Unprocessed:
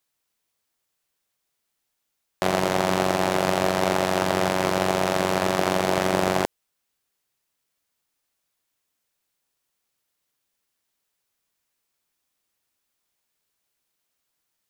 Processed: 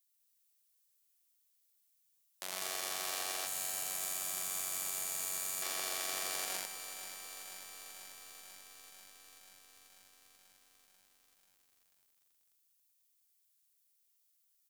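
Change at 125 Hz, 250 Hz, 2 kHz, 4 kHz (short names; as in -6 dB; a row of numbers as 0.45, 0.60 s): -34.5, -32.5, -15.5, -10.0 dB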